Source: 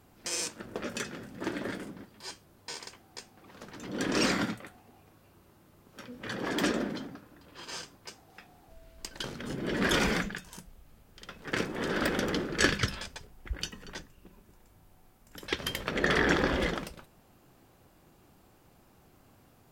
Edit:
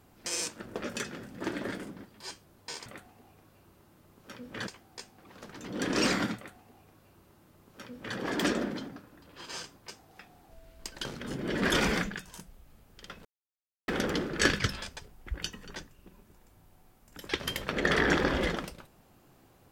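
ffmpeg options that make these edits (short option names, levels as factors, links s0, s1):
-filter_complex "[0:a]asplit=5[s0][s1][s2][s3][s4];[s0]atrim=end=2.862[s5];[s1]atrim=start=4.548:end=6.362[s6];[s2]atrim=start=2.858:end=11.44,asetpts=PTS-STARTPTS,afade=t=out:st=8.578:d=0.004:c=hsin[s7];[s3]atrim=start=11.44:end=12.07,asetpts=PTS-STARTPTS,volume=0[s8];[s4]atrim=start=12.07,asetpts=PTS-STARTPTS,afade=t=in:d=0.004:c=hsin[s9];[s5][s6]acrossfade=d=0.004:c1=hsin:c2=hsin[s10];[s7][s8][s9]concat=n=3:v=0:a=1[s11];[s10][s11]acrossfade=d=0.004:c1=hsin:c2=hsin"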